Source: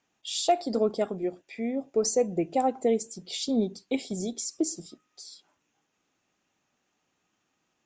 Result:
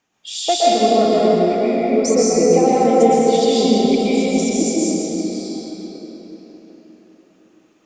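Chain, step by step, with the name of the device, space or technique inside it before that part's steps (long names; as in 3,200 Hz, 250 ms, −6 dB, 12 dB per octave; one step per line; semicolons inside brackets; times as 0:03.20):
cathedral (convolution reverb RT60 4.6 s, pre-delay 115 ms, DRR −9.5 dB)
level +4 dB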